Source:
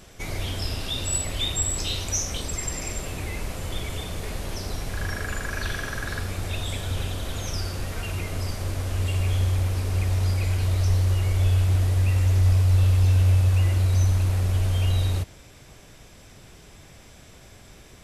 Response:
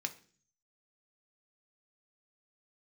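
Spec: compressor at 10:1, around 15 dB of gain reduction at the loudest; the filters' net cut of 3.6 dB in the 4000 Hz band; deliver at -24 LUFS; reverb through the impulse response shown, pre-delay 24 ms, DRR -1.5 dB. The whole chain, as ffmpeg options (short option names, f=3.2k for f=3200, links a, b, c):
-filter_complex "[0:a]equalizer=f=4k:t=o:g=-4.5,acompressor=threshold=-31dB:ratio=10,asplit=2[a][b];[1:a]atrim=start_sample=2205,adelay=24[c];[b][c]afir=irnorm=-1:irlink=0,volume=1dB[d];[a][d]amix=inputs=2:normalize=0,volume=10dB"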